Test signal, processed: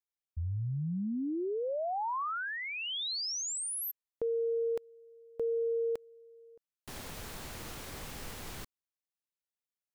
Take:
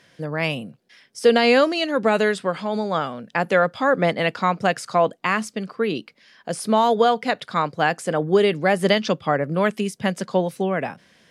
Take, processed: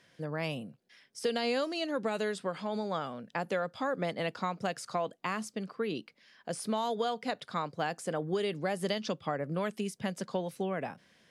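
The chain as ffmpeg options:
ffmpeg -i in.wav -filter_complex "[0:a]acrossover=split=1500|3100[link_01][link_02][link_03];[link_01]acompressor=threshold=-21dB:ratio=4[link_04];[link_02]acompressor=threshold=-40dB:ratio=4[link_05];[link_03]acompressor=threshold=-27dB:ratio=4[link_06];[link_04][link_05][link_06]amix=inputs=3:normalize=0,volume=-8.5dB" out.wav

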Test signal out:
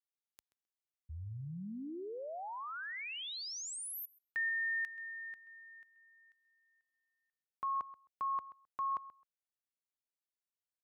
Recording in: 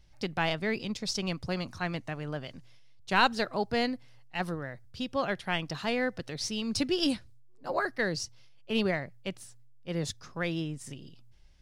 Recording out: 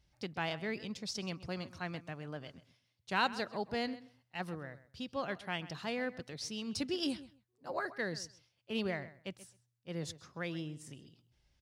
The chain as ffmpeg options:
ffmpeg -i in.wav -filter_complex "[0:a]highpass=53,asplit=2[link_01][link_02];[link_02]adelay=131,lowpass=frequency=4700:poles=1,volume=-16dB,asplit=2[link_03][link_04];[link_04]adelay=131,lowpass=frequency=4700:poles=1,volume=0.16[link_05];[link_01][link_03][link_05]amix=inputs=3:normalize=0,volume=-7.5dB" out.wav

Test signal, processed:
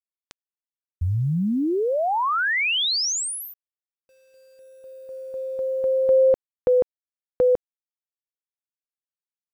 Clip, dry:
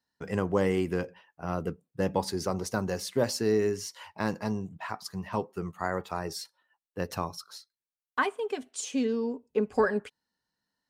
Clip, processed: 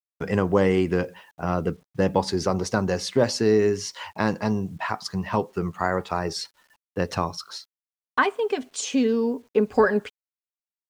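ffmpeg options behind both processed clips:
ffmpeg -i in.wav -filter_complex "[0:a]lowpass=6300,asplit=2[link_01][link_02];[link_02]acompressor=threshold=-36dB:ratio=12,volume=-2dB[link_03];[link_01][link_03]amix=inputs=2:normalize=0,acrusher=bits=10:mix=0:aa=0.000001,volume=5dB" out.wav

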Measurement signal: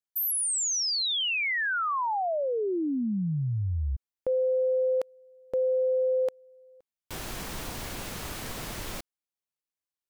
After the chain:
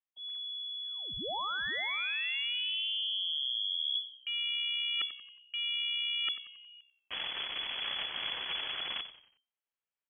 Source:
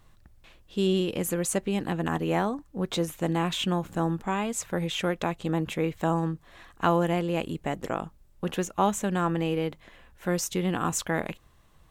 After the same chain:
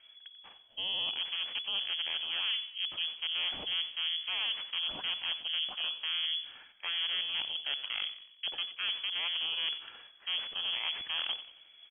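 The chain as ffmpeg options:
ffmpeg -i in.wav -filter_complex "[0:a]areverse,acompressor=threshold=-36dB:ratio=10:attack=91:release=350:knee=1:detection=rms,areverse,aeval=exprs='0.112*(cos(1*acos(clip(val(0)/0.112,-1,1)))-cos(1*PI/2))+0.0316*(cos(5*acos(clip(val(0)/0.112,-1,1)))-cos(5*PI/2))+0.0447*(cos(8*acos(clip(val(0)/0.112,-1,1)))-cos(8*PI/2))':channel_layout=same,lowpass=frequency=2900:width_type=q:width=0.5098,lowpass=frequency=2900:width_type=q:width=0.6013,lowpass=frequency=2900:width_type=q:width=0.9,lowpass=frequency=2900:width_type=q:width=2.563,afreqshift=-3400,asplit=5[link_01][link_02][link_03][link_04][link_05];[link_02]adelay=91,afreqshift=-64,volume=-14dB[link_06];[link_03]adelay=182,afreqshift=-128,volume=-21.7dB[link_07];[link_04]adelay=273,afreqshift=-192,volume=-29.5dB[link_08];[link_05]adelay=364,afreqshift=-256,volume=-37.2dB[link_09];[link_01][link_06][link_07][link_08][link_09]amix=inputs=5:normalize=0,volume=-7dB" out.wav

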